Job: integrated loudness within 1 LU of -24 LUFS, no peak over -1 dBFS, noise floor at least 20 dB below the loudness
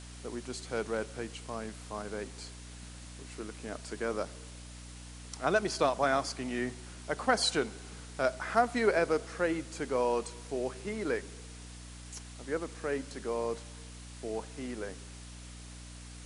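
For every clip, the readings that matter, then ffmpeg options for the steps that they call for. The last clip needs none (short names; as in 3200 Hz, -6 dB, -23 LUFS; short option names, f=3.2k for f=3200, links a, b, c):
hum 60 Hz; harmonics up to 300 Hz; hum level -46 dBFS; noise floor -47 dBFS; noise floor target -54 dBFS; loudness -33.5 LUFS; peak -12.0 dBFS; loudness target -24.0 LUFS
-> -af "bandreject=f=60:t=h:w=4,bandreject=f=120:t=h:w=4,bandreject=f=180:t=h:w=4,bandreject=f=240:t=h:w=4,bandreject=f=300:t=h:w=4"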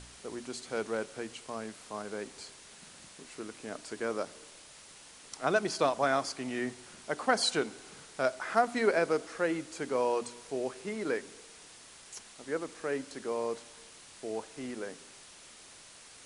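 hum none; noise floor -53 dBFS; noise floor target -54 dBFS
-> -af "afftdn=nr=6:nf=-53"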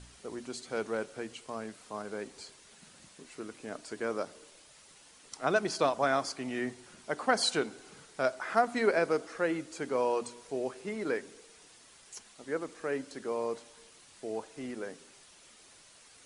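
noise floor -58 dBFS; loudness -33.5 LUFS; peak -12.0 dBFS; loudness target -24.0 LUFS
-> -af "volume=9.5dB"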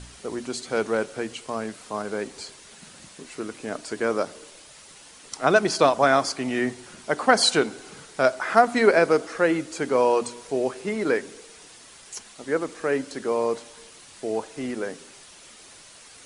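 loudness -24.0 LUFS; peak -2.5 dBFS; noise floor -48 dBFS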